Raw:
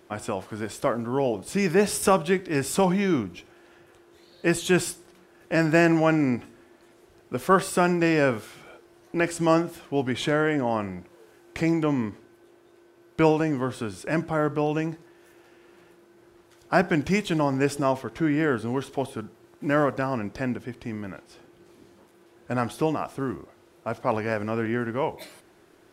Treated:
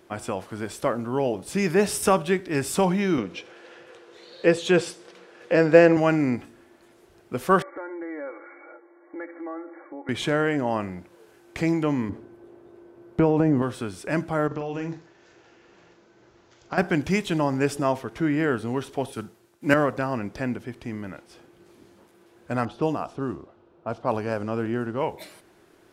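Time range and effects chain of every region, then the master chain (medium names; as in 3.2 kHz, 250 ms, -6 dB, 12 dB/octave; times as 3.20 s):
3.18–5.97 s: band-pass 130–5400 Hz + peaking EQ 490 Hz +14.5 dB 0.25 oct + tape noise reduction on one side only encoder only
7.62–10.09 s: brick-wall FIR band-pass 280–2300 Hz + comb 3.6 ms, depth 72% + compression 3:1, threshold -37 dBFS
12.09–13.62 s: tilt shelf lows +8.5 dB, about 1.5 kHz + compression 5:1, threshold -15 dBFS
14.47–16.78 s: careless resampling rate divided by 3×, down none, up filtered + compression 4:1, threshold -27 dBFS + doubling 42 ms -7 dB
19.12–19.74 s: treble shelf 3.4 kHz +8.5 dB + three bands expanded up and down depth 70%
22.65–25.01 s: peaking EQ 2 kHz -10 dB 0.52 oct + level-controlled noise filter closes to 1.7 kHz, open at -21.5 dBFS
whole clip: none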